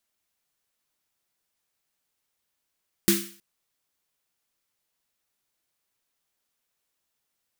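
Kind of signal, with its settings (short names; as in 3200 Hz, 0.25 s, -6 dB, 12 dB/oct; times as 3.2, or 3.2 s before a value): snare drum length 0.32 s, tones 200 Hz, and 340 Hz, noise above 1400 Hz, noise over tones -1 dB, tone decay 0.38 s, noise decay 0.46 s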